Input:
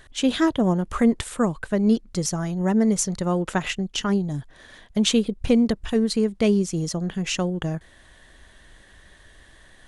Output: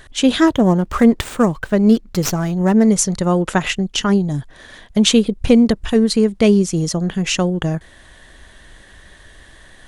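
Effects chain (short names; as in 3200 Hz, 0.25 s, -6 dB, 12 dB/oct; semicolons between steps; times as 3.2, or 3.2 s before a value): 0.48–2.87 running maximum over 3 samples; gain +7 dB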